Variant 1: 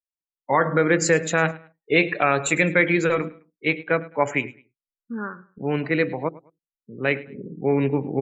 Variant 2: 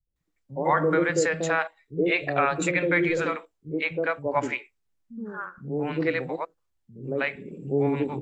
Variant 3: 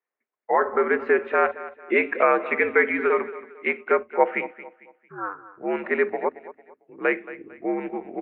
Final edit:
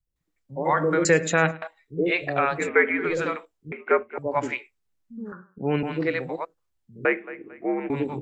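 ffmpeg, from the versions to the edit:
-filter_complex "[0:a]asplit=2[s0][s1];[2:a]asplit=3[s2][s3][s4];[1:a]asplit=6[s5][s6][s7][s8][s9][s10];[s5]atrim=end=1.052[s11];[s0]atrim=start=1.048:end=1.622[s12];[s6]atrim=start=1.618:end=2.71[s13];[s2]atrim=start=2.55:end=3.15[s14];[s7]atrim=start=2.99:end=3.722[s15];[s3]atrim=start=3.718:end=4.182[s16];[s8]atrim=start=4.178:end=5.322[s17];[s1]atrim=start=5.318:end=5.832[s18];[s9]atrim=start=5.828:end=7.052[s19];[s4]atrim=start=7.048:end=7.902[s20];[s10]atrim=start=7.898[s21];[s11][s12]acrossfade=d=0.004:c1=hsin:c2=hsin[s22];[s22][s13]acrossfade=d=0.004:c1=hsin:c2=hsin[s23];[s23][s14]acrossfade=d=0.16:c1=tri:c2=tri[s24];[s24][s15]acrossfade=d=0.16:c1=tri:c2=tri[s25];[s25][s16]acrossfade=d=0.004:c1=hsin:c2=hsin[s26];[s26][s17]acrossfade=d=0.004:c1=hsin:c2=hsin[s27];[s27][s18]acrossfade=d=0.004:c1=hsin:c2=hsin[s28];[s28][s19]acrossfade=d=0.004:c1=hsin:c2=hsin[s29];[s29][s20]acrossfade=d=0.004:c1=hsin:c2=hsin[s30];[s30][s21]acrossfade=d=0.004:c1=hsin:c2=hsin"

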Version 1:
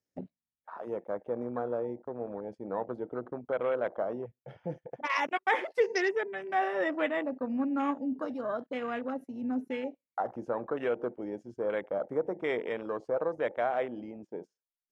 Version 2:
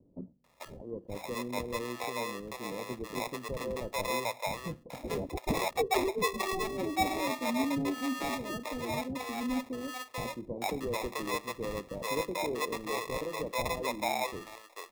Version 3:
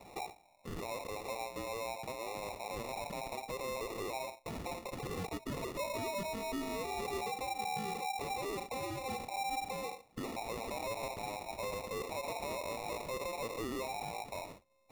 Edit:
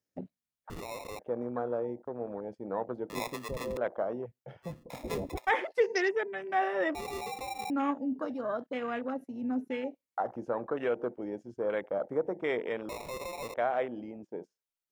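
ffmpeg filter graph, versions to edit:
-filter_complex "[2:a]asplit=3[s0][s1][s2];[1:a]asplit=2[s3][s4];[0:a]asplit=6[s5][s6][s7][s8][s9][s10];[s5]atrim=end=0.702[s11];[s0]atrim=start=0.698:end=1.192[s12];[s6]atrim=start=1.188:end=3.102[s13];[s3]atrim=start=3.098:end=3.772[s14];[s7]atrim=start=3.768:end=4.78[s15];[s4]atrim=start=4.62:end=5.51[s16];[s8]atrim=start=5.35:end=6.952[s17];[s1]atrim=start=6.948:end=7.702[s18];[s9]atrim=start=7.698:end=12.892[s19];[s2]atrim=start=12.888:end=13.542[s20];[s10]atrim=start=13.538[s21];[s11][s12]acrossfade=d=0.004:c1=hsin:c2=hsin[s22];[s22][s13]acrossfade=d=0.004:c1=hsin:c2=hsin[s23];[s23][s14]acrossfade=d=0.004:c1=hsin:c2=hsin[s24];[s24][s15]acrossfade=d=0.004:c1=hsin:c2=hsin[s25];[s25][s16]acrossfade=d=0.16:c1=tri:c2=tri[s26];[s26][s17]acrossfade=d=0.16:c1=tri:c2=tri[s27];[s27][s18]acrossfade=d=0.004:c1=hsin:c2=hsin[s28];[s28][s19]acrossfade=d=0.004:c1=hsin:c2=hsin[s29];[s29][s20]acrossfade=d=0.004:c1=hsin:c2=hsin[s30];[s30][s21]acrossfade=d=0.004:c1=hsin:c2=hsin"

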